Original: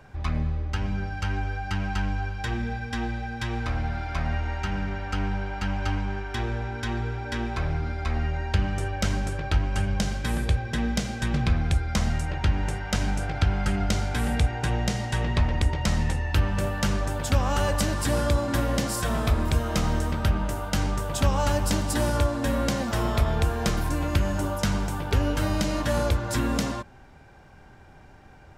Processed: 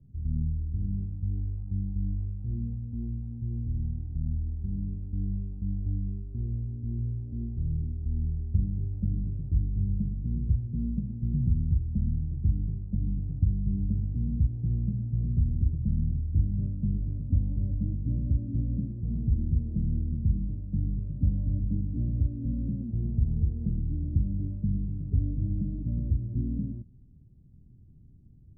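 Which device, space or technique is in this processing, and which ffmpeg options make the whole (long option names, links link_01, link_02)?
the neighbour's flat through the wall: -af "lowpass=frequency=250:width=0.5412,lowpass=frequency=250:width=1.3066,equalizer=frequency=120:width_type=o:width=0.99:gain=4,volume=-3.5dB"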